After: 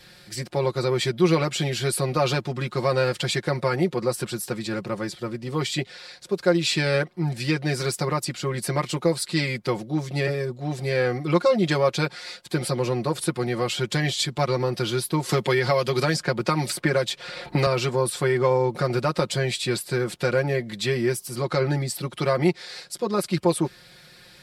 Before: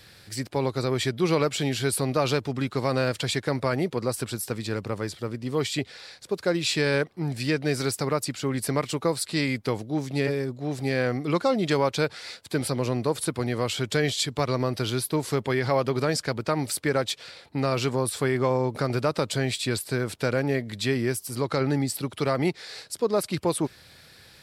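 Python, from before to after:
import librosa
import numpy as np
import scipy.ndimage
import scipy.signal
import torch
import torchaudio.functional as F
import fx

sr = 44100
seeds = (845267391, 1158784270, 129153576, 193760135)

y = fx.high_shelf(x, sr, hz=11000.0, db=-5.5)
y = y + 0.86 * np.pad(y, (int(5.6 * sr / 1000.0), 0))[:len(y)]
y = fx.band_squash(y, sr, depth_pct=100, at=(15.29, 17.67))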